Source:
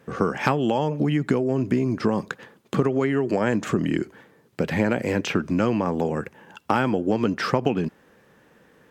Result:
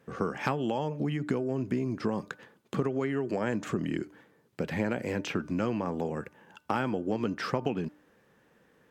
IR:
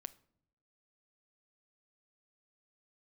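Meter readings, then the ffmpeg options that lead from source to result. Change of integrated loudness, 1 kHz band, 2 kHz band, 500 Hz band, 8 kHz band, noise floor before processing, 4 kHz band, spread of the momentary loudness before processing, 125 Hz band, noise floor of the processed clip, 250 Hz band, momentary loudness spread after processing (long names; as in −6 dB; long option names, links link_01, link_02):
−8.0 dB, −8.0 dB, −8.0 dB, −8.0 dB, −8.0 dB, −58 dBFS, −8.0 dB, 7 LU, −8.0 dB, −65 dBFS, −8.0 dB, 7 LU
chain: -af "bandreject=frequency=298.7:width_type=h:width=4,bandreject=frequency=597.4:width_type=h:width=4,bandreject=frequency=896.1:width_type=h:width=4,bandreject=frequency=1194.8:width_type=h:width=4,bandreject=frequency=1493.5:width_type=h:width=4,volume=-8dB"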